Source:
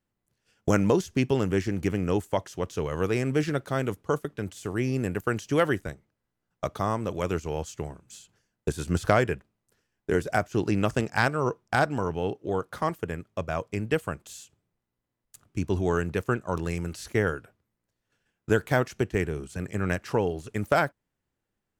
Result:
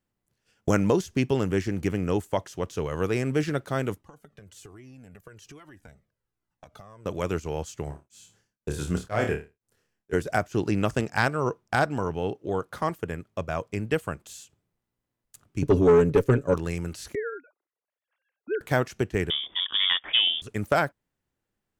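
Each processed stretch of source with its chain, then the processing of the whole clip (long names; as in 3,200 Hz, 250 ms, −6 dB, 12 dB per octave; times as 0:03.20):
0:03.98–0:07.06: downward compressor 16 to 1, threshold −38 dBFS + flanger whose copies keep moving one way falling 1.2 Hz
0:07.84–0:10.13: flutter between parallel walls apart 4.7 metres, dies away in 0.3 s + tremolo along a rectified sine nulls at 2 Hz
0:15.62–0:16.54: low shelf with overshoot 620 Hz +6.5 dB, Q 3 + comb filter 7.1 ms, depth 70% + tube saturation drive 12 dB, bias 0.3
0:17.15–0:18.61: three sine waves on the formant tracks + downward compressor 1.5 to 1, threshold −36 dBFS
0:19.30–0:20.42: leveller curve on the samples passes 1 + voice inversion scrambler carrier 3,500 Hz
whole clip: no processing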